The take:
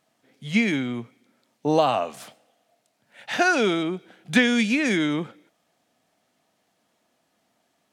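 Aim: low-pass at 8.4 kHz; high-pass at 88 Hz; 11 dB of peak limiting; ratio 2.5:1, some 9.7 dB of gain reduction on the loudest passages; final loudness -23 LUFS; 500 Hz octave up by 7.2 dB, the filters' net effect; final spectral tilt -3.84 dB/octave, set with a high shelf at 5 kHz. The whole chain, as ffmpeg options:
-af "highpass=88,lowpass=8400,equalizer=f=500:t=o:g=9,highshelf=f=5000:g=4,acompressor=threshold=0.0708:ratio=2.5,volume=2.24,alimiter=limit=0.2:level=0:latency=1"

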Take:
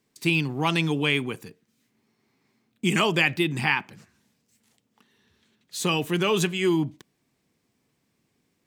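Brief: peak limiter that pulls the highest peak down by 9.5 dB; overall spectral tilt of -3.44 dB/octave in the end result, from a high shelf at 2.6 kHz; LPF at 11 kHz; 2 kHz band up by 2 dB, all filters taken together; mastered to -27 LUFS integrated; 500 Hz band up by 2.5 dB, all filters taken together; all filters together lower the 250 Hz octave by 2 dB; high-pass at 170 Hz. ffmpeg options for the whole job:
-af "highpass=170,lowpass=11000,equalizer=f=250:t=o:g=-5,equalizer=f=500:t=o:g=6,equalizer=f=2000:t=o:g=6,highshelf=f=2600:g=-7,volume=1.06,alimiter=limit=0.178:level=0:latency=1"

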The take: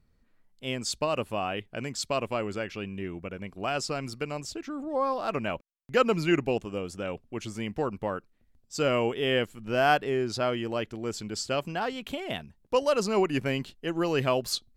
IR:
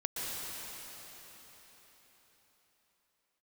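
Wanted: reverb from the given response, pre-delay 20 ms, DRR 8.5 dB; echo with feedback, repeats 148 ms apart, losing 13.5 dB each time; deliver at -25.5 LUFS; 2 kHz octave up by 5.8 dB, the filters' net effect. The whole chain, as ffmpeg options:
-filter_complex "[0:a]equalizer=f=2000:t=o:g=8,aecho=1:1:148|296:0.211|0.0444,asplit=2[s0][s1];[1:a]atrim=start_sample=2205,adelay=20[s2];[s1][s2]afir=irnorm=-1:irlink=0,volume=0.211[s3];[s0][s3]amix=inputs=2:normalize=0,volume=1.26"

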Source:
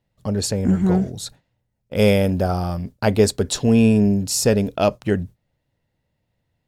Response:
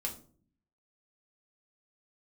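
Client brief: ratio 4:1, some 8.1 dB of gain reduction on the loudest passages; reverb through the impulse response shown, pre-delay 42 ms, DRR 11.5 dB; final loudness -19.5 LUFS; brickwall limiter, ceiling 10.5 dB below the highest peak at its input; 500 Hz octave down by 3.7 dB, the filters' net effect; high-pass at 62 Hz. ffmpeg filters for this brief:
-filter_complex "[0:a]highpass=62,equalizer=f=500:t=o:g=-4.5,acompressor=threshold=0.0794:ratio=4,alimiter=limit=0.112:level=0:latency=1,asplit=2[s0][s1];[1:a]atrim=start_sample=2205,adelay=42[s2];[s1][s2]afir=irnorm=-1:irlink=0,volume=0.237[s3];[s0][s3]amix=inputs=2:normalize=0,volume=2.82"

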